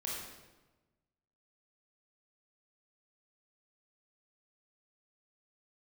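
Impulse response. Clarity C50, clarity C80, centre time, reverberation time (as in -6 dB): -0.5 dB, 2.5 dB, 76 ms, 1.2 s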